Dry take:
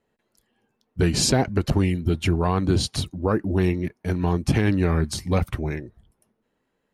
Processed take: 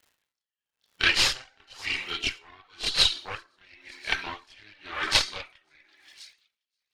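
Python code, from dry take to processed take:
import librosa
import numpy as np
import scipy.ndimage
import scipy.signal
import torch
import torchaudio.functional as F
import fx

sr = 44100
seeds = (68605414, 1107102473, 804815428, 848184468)

p1 = fx.rev_plate(x, sr, seeds[0], rt60_s=0.99, hf_ratio=0.6, predelay_ms=0, drr_db=5.0)
p2 = np.sign(p1) * np.maximum(np.abs(p1) - 10.0 ** (-35.0 / 20.0), 0.0)
p3 = p1 + F.gain(torch.from_numpy(p2), -6.0).numpy()
p4 = scipy.signal.sosfilt(scipy.signal.butter(2, 1200.0, 'highpass', fs=sr, output='sos'), p3)
p5 = fx.cheby_harmonics(p4, sr, harmonics=(3, 4), levels_db=(-17, -9), full_scale_db=-6.5)
p6 = fx.peak_eq(p5, sr, hz=3200.0, db=12.0, octaves=1.8)
p7 = p6 + fx.echo_wet_highpass(p6, sr, ms=528, feedback_pct=52, hz=4400.0, wet_db=-16.5, dry=0)
p8 = fx.chorus_voices(p7, sr, voices=6, hz=0.82, base_ms=28, depth_ms=2.0, mix_pct=70)
p9 = fx.air_absorb(p8, sr, metres=63.0)
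p10 = fx.dmg_crackle(p9, sr, seeds[1], per_s=250.0, level_db=-58.0)
p11 = p10 * 10.0 ** (-34 * (0.5 - 0.5 * np.cos(2.0 * np.pi * 0.97 * np.arange(len(p10)) / sr)) / 20.0)
y = F.gain(torch.from_numpy(p11), 8.5).numpy()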